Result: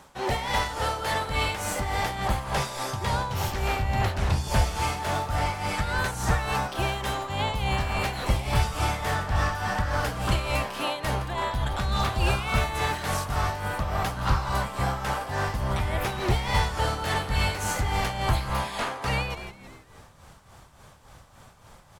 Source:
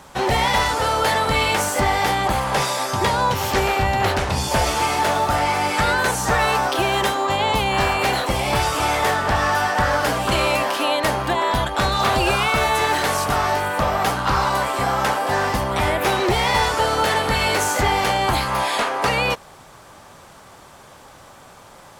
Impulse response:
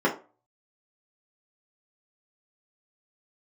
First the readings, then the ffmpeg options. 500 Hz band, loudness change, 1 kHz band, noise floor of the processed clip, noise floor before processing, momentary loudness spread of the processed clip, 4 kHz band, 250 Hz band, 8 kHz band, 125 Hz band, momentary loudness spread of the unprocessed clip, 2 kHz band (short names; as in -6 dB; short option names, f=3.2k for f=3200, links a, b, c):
-10.5 dB, -8.0 dB, -9.5 dB, -53 dBFS, -45 dBFS, 4 LU, -9.0 dB, -7.0 dB, -9.0 dB, -1.0 dB, 3 LU, -9.0 dB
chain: -filter_complex "[0:a]asubboost=boost=4:cutoff=150,asplit=6[a][b][c][d][e][f];[b]adelay=166,afreqshift=-130,volume=-13dB[g];[c]adelay=332,afreqshift=-260,volume=-19.2dB[h];[d]adelay=498,afreqshift=-390,volume=-25.4dB[i];[e]adelay=664,afreqshift=-520,volume=-31.6dB[j];[f]adelay=830,afreqshift=-650,volume=-37.8dB[k];[a][g][h][i][j][k]amix=inputs=6:normalize=0,tremolo=f=3.5:d=0.59,volume=-6.5dB"